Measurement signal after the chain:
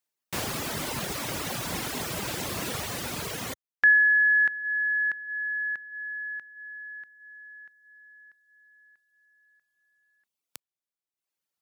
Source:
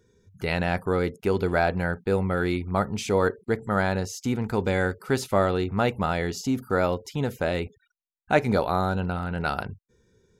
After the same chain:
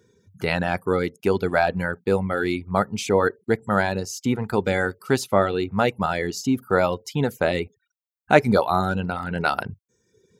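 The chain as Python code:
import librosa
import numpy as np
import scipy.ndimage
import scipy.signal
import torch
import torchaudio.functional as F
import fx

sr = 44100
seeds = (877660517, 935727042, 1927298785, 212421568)

y = fx.dereverb_blind(x, sr, rt60_s=0.95)
y = scipy.signal.sosfilt(scipy.signal.butter(2, 100.0, 'highpass', fs=sr, output='sos'), y)
y = fx.rider(y, sr, range_db=3, speed_s=2.0)
y = y * librosa.db_to_amplitude(4.0)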